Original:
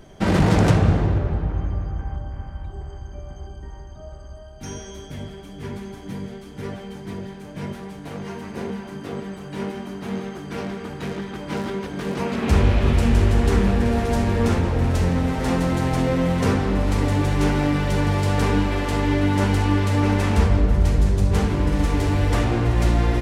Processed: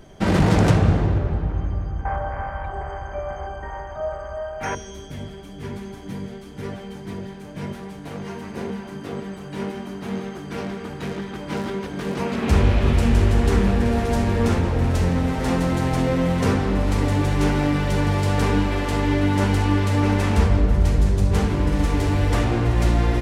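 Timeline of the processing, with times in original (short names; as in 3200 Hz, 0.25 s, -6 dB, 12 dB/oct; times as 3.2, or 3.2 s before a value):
2.05–4.75 band shelf 1100 Hz +16 dB 2.7 oct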